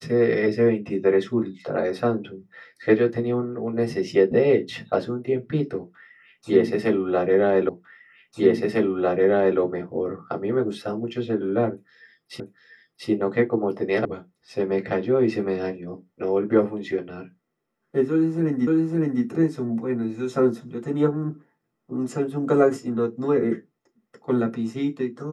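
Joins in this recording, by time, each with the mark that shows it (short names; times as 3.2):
7.69 repeat of the last 1.9 s
12.4 repeat of the last 0.69 s
14.05 sound cut off
18.67 repeat of the last 0.56 s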